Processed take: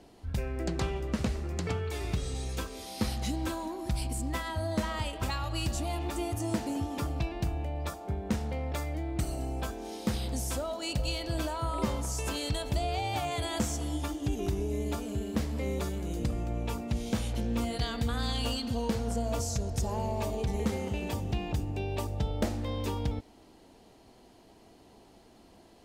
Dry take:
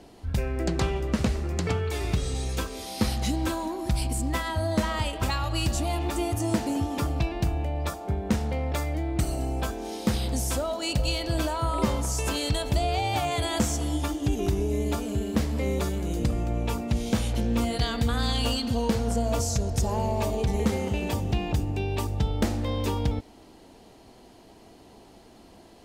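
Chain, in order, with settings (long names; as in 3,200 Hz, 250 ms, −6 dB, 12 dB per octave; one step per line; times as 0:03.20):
0:21.75–0:22.49: parametric band 590 Hz +7.5 dB 0.41 octaves
level −5.5 dB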